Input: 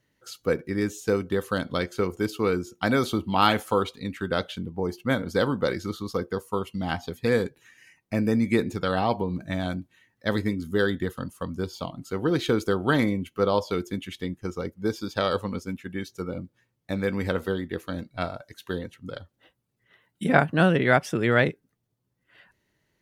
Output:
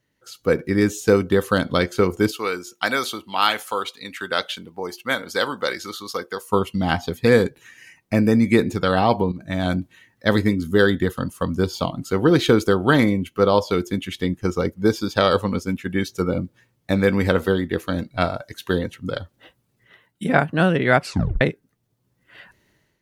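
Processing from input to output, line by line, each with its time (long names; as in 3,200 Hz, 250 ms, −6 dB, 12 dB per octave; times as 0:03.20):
0:02.31–0:06.49: high-pass filter 1,400 Hz 6 dB per octave
0:09.32–0:09.72: fade in, from −13 dB
0:21.01: tape stop 0.40 s
whole clip: automatic gain control gain up to 11.5 dB; level −1 dB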